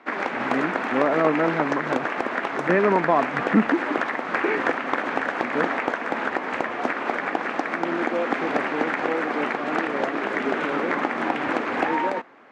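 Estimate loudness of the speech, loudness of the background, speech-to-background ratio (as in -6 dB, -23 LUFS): -25.0 LUFS, -25.5 LUFS, 0.5 dB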